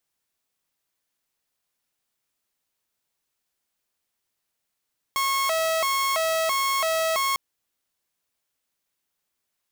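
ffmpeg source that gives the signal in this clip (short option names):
-f lavfi -i "aevalsrc='0.112*(2*mod((868.5*t+221.5/1.5*(0.5-abs(mod(1.5*t,1)-0.5))),1)-1)':d=2.2:s=44100"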